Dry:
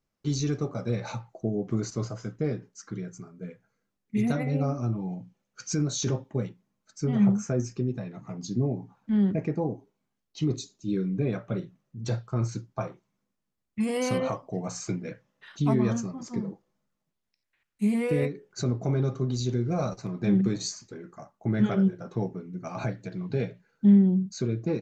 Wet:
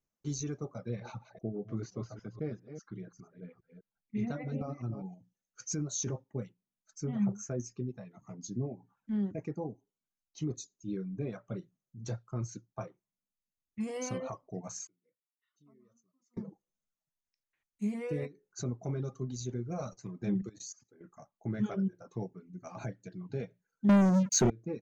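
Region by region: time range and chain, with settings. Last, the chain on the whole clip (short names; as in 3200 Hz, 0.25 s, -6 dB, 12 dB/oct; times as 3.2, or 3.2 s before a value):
0.78–5.06 reverse delay 0.202 s, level -8.5 dB + LPF 4600 Hz 24 dB/oct
14.87–16.37 running mean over 54 samples + differentiator + mismatched tape noise reduction encoder only
20.42–21.01 HPF 93 Hz + notch 1000 Hz, Q 6.4 + level quantiser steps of 13 dB
23.89–24.5 HPF 110 Hz + sample leveller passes 5
whole clip: bell 6400 Hz +14.5 dB 0.46 oct; reverb removal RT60 0.74 s; high shelf 3500 Hz -9.5 dB; gain -8 dB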